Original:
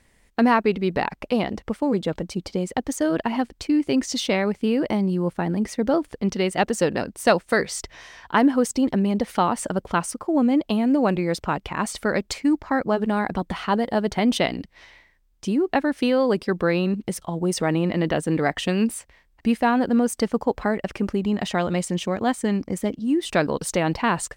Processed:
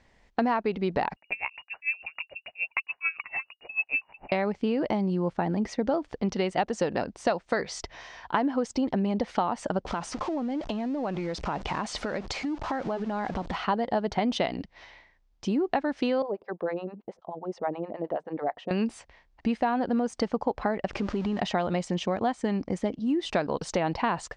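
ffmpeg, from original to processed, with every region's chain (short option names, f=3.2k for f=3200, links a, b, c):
-filter_complex "[0:a]asettb=1/sr,asplit=3[a][b][c];[a]atrim=end=1.164[d];[b]atrim=start=1.16:end=4.32,asetpts=PTS-STARTPTS,afade=t=in:d=0.004:c=qsin,afade=t=out:st=3.156:d=0.004:c=qsin,lowpass=f=2.5k:t=q:w=0.5098,lowpass=f=2.5k:t=q:w=0.6013,lowpass=f=2.5k:t=q:w=0.9,lowpass=f=2.5k:t=q:w=2.563,afreqshift=-2900,aeval=exprs='val(0)*pow(10,-26*(0.5-0.5*cos(2*PI*6.8*n/s))/20)':c=same[e];[c]atrim=start=4.316[f];[d][e]acrossfade=d=0.004:c1=hsin:c2=qsin[g];[g][f]acrossfade=d=0.004:c1=qsin:c2=hsin,asettb=1/sr,asplit=3[h][i][j];[h]atrim=end=9.864[k];[i]atrim=start=9.86:end=13.56,asetpts=PTS-STARTPTS,afade=t=in:d=0.004:c=qsin,afade=t=out:st=3.696:d=0.004:c=qsin,aeval=exprs='val(0)+0.5*0.0266*sgn(val(0))':c=same,lowpass=12k,acompressor=threshold=-25dB:ratio=12:attack=3.2:release=140:knee=1:detection=peak[l];[j]atrim=start=13.556[m];[k][l]acrossfade=d=0.004:c1=hsin:c2=qsin[n];[n][m]acrossfade=d=0.004:c1=qsin:c2=hsin,asettb=1/sr,asplit=3[o][p][q];[o]atrim=end=16.224[r];[p]atrim=start=16.22:end=18.71,asetpts=PTS-STARTPTS,afade=t=in:d=0.004:c=qsin,afade=t=out:st=2.486:d=0.004:c=qsin,bandpass=f=660:t=q:w=1.1,acrossover=split=620[s][t];[s]aeval=exprs='val(0)*(1-1/2+1/2*cos(2*PI*9.4*n/s))':c=same[u];[t]aeval=exprs='val(0)*(1-1/2-1/2*cos(2*PI*9.4*n/s))':c=same[v];[u][v]amix=inputs=2:normalize=0[w];[q]atrim=start=18.706[x];[r][w]acrossfade=d=0.004:c1=hsin:c2=qsin[y];[y][x]acrossfade=d=0.004:c1=qsin:c2=hsin,asettb=1/sr,asplit=3[z][aa][ab];[z]atrim=end=20.934[ac];[aa]atrim=start=20.93:end=21.4,asetpts=PTS-STARTPTS,afade=t=in:d=0.004:c=qsin,afade=t=out:st=0.466:d=0.004:c=qsin,aeval=exprs='val(0)+0.5*0.02*sgn(val(0))':c=same,lowpass=9.1k,acompressor=threshold=-23dB:ratio=3:attack=3.2:release=140:knee=1:detection=peak[ad];[ab]atrim=start=21.396[ae];[ac][ad]acrossfade=d=0.004:c1=hsin:c2=qsin[af];[af][ae]acrossfade=d=0.004:c1=qsin:c2=hsin,lowpass=f=6.2k:w=0.5412,lowpass=f=6.2k:w=1.3066,equalizer=f=770:t=o:w=0.95:g=6,acompressor=threshold=-20dB:ratio=6,volume=-2.5dB"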